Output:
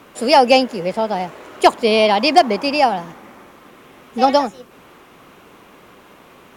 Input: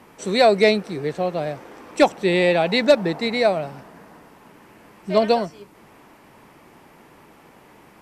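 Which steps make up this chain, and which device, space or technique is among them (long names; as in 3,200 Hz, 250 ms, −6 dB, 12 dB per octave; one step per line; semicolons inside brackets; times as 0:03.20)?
nightcore (speed change +22%)
level +4 dB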